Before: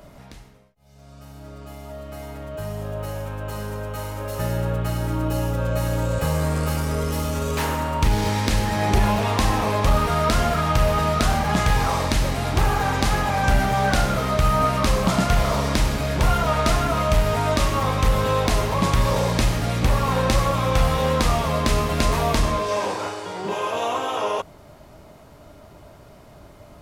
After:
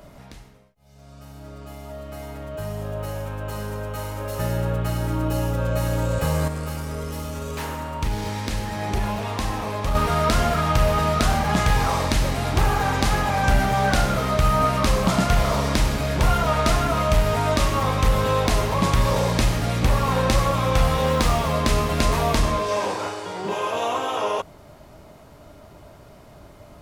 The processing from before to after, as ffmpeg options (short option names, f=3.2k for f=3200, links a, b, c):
-filter_complex "[0:a]asettb=1/sr,asplit=3[a][b][c];[a]atrim=end=21.074[d];[b]atrim=start=21.07:end=21.53,asetpts=PTS-STARTPTS,afade=t=in:d=0.004:c=qsin,afade=t=out:st=0.456:d=0.004:c=qsin,acrusher=bits=7:mode=log:mix=0:aa=0.000001[e];[c]atrim=start=21.526[f];[d][e]acrossfade=d=0.004:c1=hsin:c2=qsin[g];[g][f]acrossfade=d=0.004:c1=qsin:c2=hsin,asplit=3[h][i][j];[h]atrim=end=6.482[k];[i]atrim=start=6.478:end=9.952,asetpts=PTS-STARTPTS,volume=-6dB[l];[j]atrim=start=9.948[m];[k][l]acrossfade=d=0.004:c1=hsin:c2=hsin[n];[n][m]acrossfade=d=0.004:c1=hsin:c2=hsin"